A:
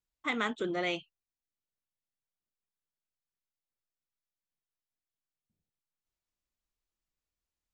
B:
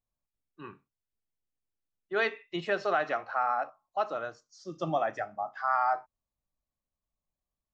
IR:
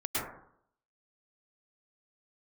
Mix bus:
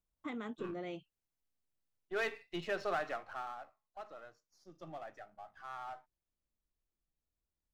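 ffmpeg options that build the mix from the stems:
-filter_complex "[0:a]tiltshelf=frequency=820:gain=7.5,acompressor=threshold=-36dB:ratio=6,volume=-3.5dB[link_01];[1:a]aeval=exprs='if(lt(val(0),0),0.447*val(0),val(0))':channel_layout=same,aeval=exprs='(tanh(14.1*val(0)+0.5)-tanh(0.5))/14.1':channel_layout=same,afade=type=out:start_time=2.93:duration=0.64:silence=0.281838[link_02];[link_01][link_02]amix=inputs=2:normalize=0"

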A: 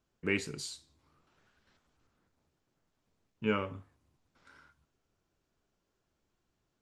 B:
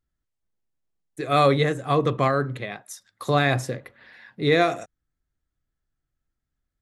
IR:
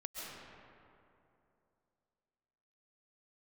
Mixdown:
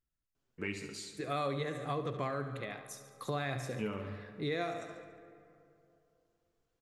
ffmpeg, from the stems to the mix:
-filter_complex "[0:a]flanger=delay=7.1:depth=3.3:regen=46:speed=0.94:shape=sinusoidal,adelay=350,volume=-1.5dB,asplit=3[link_01][link_02][link_03];[link_02]volume=-12dB[link_04];[link_03]volume=-10dB[link_05];[1:a]volume=-9.5dB,asplit=3[link_06][link_07][link_08];[link_07]volume=-16dB[link_09];[link_08]volume=-10.5dB[link_10];[2:a]atrim=start_sample=2205[link_11];[link_04][link_09]amix=inputs=2:normalize=0[link_12];[link_12][link_11]afir=irnorm=-1:irlink=0[link_13];[link_05][link_10]amix=inputs=2:normalize=0,aecho=0:1:71|142|213|284|355|426|497|568:1|0.53|0.281|0.149|0.0789|0.0418|0.0222|0.0117[link_14];[link_01][link_06][link_13][link_14]amix=inputs=4:normalize=0,acompressor=threshold=-34dB:ratio=3"

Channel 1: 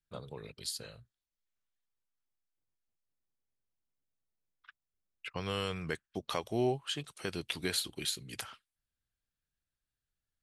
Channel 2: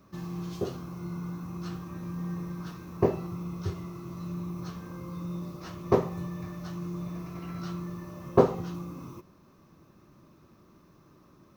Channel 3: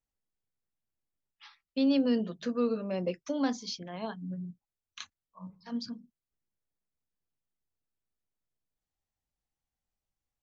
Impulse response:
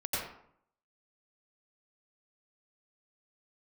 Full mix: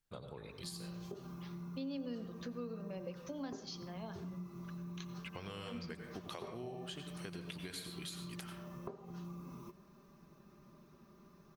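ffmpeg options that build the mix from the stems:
-filter_complex "[0:a]volume=0dB,asplit=2[link_01][link_02];[link_02]volume=-12.5dB[link_03];[1:a]aecho=1:1:5:0.69,adelay=500,volume=-5.5dB[link_04];[2:a]volume=-2dB,asplit=2[link_05][link_06];[link_06]volume=-17dB[link_07];[link_01][link_04]amix=inputs=2:normalize=0,acompressor=threshold=-34dB:ratio=10,volume=0dB[link_08];[3:a]atrim=start_sample=2205[link_09];[link_03][link_07]amix=inputs=2:normalize=0[link_10];[link_10][link_09]afir=irnorm=-1:irlink=0[link_11];[link_05][link_08][link_11]amix=inputs=3:normalize=0,acompressor=threshold=-47dB:ratio=2.5"

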